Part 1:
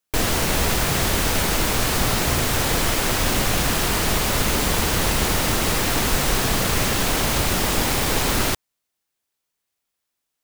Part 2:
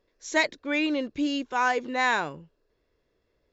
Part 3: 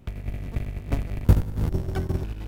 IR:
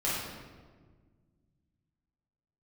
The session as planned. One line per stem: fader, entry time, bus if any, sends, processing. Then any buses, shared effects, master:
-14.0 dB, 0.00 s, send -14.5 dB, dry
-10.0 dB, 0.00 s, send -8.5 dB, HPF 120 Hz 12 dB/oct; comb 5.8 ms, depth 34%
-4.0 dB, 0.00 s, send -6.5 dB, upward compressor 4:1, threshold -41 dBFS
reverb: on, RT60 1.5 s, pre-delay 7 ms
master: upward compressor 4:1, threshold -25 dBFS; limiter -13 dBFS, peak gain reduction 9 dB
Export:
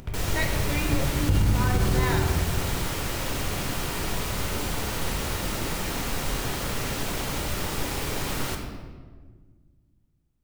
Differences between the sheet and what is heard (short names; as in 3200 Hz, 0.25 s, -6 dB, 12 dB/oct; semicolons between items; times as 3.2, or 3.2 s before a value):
stem 1: send -14.5 dB -> -7 dB; master: missing upward compressor 4:1, threshold -25 dBFS